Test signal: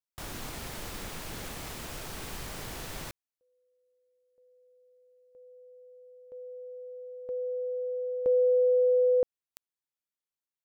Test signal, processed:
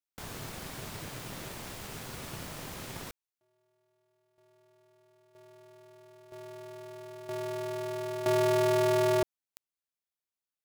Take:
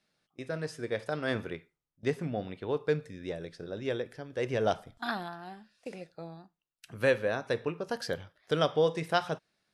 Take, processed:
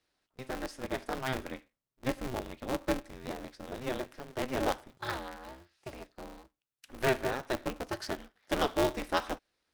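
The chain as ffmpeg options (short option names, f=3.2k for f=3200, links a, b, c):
-af "aeval=exprs='val(0)*sgn(sin(2*PI*130*n/s))':c=same,volume=-2.5dB"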